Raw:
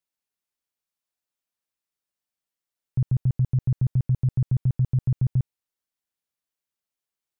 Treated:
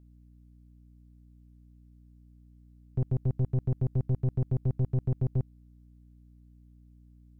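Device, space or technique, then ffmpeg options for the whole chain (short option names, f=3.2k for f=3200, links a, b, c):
valve amplifier with mains hum: -af "aeval=exprs='(tanh(14.1*val(0)+0.45)-tanh(0.45))/14.1':c=same,aeval=exprs='val(0)+0.002*(sin(2*PI*60*n/s)+sin(2*PI*2*60*n/s)/2+sin(2*PI*3*60*n/s)/3+sin(2*PI*4*60*n/s)/4+sin(2*PI*5*60*n/s)/5)':c=same"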